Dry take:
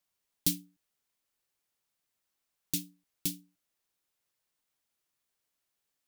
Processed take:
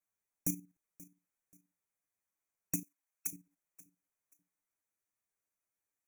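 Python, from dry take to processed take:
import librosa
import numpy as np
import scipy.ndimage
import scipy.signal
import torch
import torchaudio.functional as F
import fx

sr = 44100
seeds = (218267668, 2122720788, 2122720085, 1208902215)

p1 = fx.highpass(x, sr, hz=520.0, slope=24, at=(2.83, 3.33))
p2 = fx.level_steps(p1, sr, step_db=10)
p3 = fx.env_flanger(p2, sr, rest_ms=10.0, full_db=-35.5)
p4 = fx.brickwall_bandstop(p3, sr, low_hz=2600.0, high_hz=5600.0)
p5 = p4 + fx.echo_feedback(p4, sr, ms=532, feedback_pct=29, wet_db=-20.5, dry=0)
y = F.gain(torch.from_numpy(p5), 2.5).numpy()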